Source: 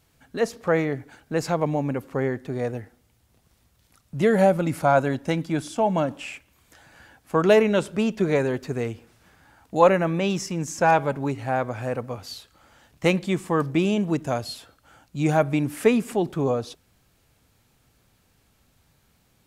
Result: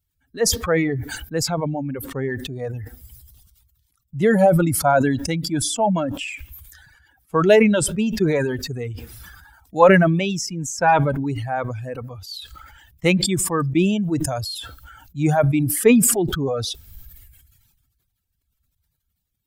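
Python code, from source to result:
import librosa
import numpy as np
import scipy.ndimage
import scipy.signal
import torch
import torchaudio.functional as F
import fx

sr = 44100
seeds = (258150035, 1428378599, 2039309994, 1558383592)

y = fx.bin_expand(x, sr, power=1.5)
y = fx.dereverb_blind(y, sr, rt60_s=1.0)
y = fx.sustainer(y, sr, db_per_s=34.0)
y = F.gain(torch.from_numpy(y), 4.5).numpy()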